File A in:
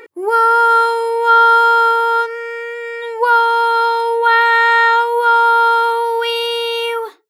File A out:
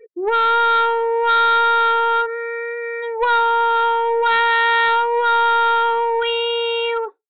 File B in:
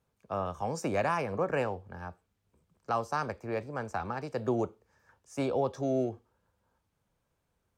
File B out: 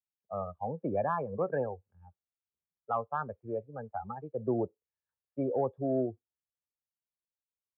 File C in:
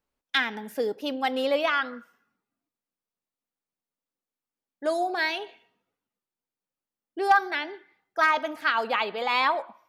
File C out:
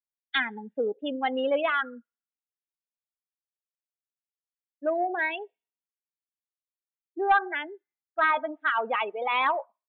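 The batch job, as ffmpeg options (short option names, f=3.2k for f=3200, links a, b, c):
-af "afftdn=nr=35:nf=-26,aresample=8000,asoftclip=type=tanh:threshold=-12dB,aresample=44100"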